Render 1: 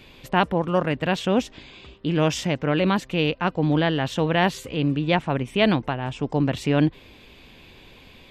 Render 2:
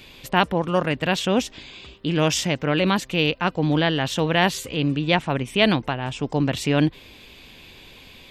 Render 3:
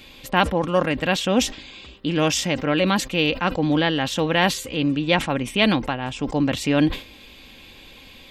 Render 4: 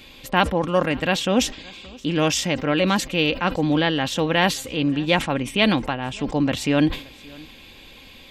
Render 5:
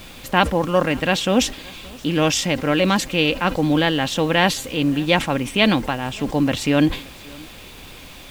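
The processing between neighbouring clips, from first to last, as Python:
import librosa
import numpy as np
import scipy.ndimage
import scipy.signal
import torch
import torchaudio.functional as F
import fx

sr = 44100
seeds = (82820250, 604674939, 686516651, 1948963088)

y1 = fx.high_shelf(x, sr, hz=2800.0, db=8.5)
y2 = y1 + 0.34 * np.pad(y1, (int(3.7 * sr / 1000.0), 0))[:len(y1)]
y2 = fx.sustainer(y2, sr, db_per_s=150.0)
y3 = y2 + 10.0 ** (-24.0 / 20.0) * np.pad(y2, (int(572 * sr / 1000.0), 0))[:len(y2)]
y4 = fx.dmg_noise_colour(y3, sr, seeds[0], colour='pink', level_db=-45.0)
y4 = y4 * librosa.db_to_amplitude(2.0)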